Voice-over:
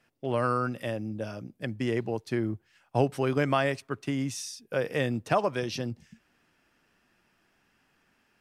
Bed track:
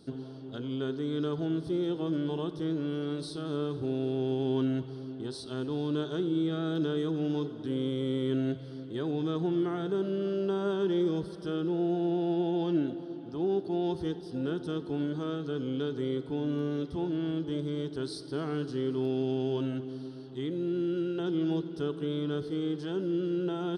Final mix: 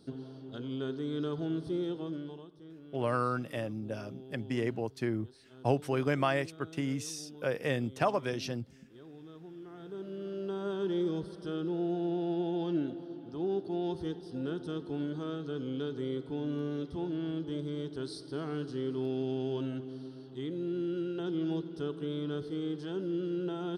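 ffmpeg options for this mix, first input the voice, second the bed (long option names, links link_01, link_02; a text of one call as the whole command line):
ffmpeg -i stem1.wav -i stem2.wav -filter_complex "[0:a]adelay=2700,volume=-3.5dB[link_01];[1:a]volume=12.5dB,afade=type=out:start_time=1.79:duration=0.69:silence=0.158489,afade=type=in:start_time=9.61:duration=1.36:silence=0.16788[link_02];[link_01][link_02]amix=inputs=2:normalize=0" out.wav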